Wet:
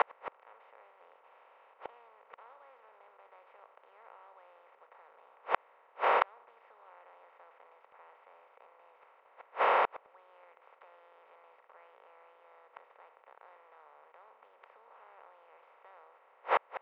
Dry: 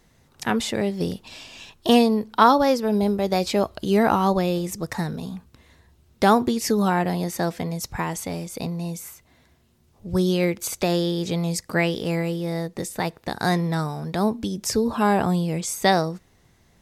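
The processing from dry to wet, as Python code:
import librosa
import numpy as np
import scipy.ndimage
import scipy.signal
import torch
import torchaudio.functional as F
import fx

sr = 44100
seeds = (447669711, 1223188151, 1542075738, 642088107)

y = fx.bin_compress(x, sr, power=0.2)
y = scipy.signal.sosfilt(scipy.signal.ellip(3, 1.0, 60, [500.0, 2500.0], 'bandpass', fs=sr, output='sos'), y)
y = fx.gate_flip(y, sr, shuts_db=-10.0, range_db=-40)
y = y * 10.0 ** (-4.5 / 20.0)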